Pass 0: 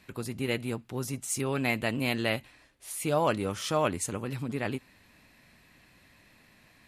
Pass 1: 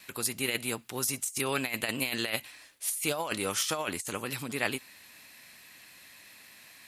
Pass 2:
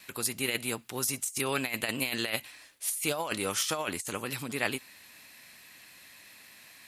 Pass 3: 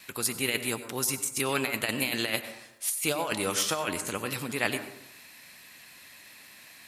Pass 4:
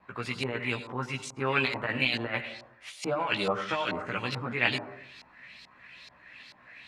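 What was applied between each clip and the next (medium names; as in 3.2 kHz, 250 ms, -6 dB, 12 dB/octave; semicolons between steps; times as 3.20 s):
tilt EQ +3.5 dB/octave; compressor with a negative ratio -30 dBFS, ratio -0.5; gate with hold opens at -51 dBFS
no audible change
plate-style reverb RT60 0.8 s, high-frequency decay 0.35×, pre-delay 80 ms, DRR 10 dB; trim +2 dB
chorus voices 6, 0.52 Hz, delay 16 ms, depth 1.1 ms; LFO low-pass saw up 2.3 Hz 810–5000 Hz; low-pass 11 kHz 12 dB/octave; trim +1.5 dB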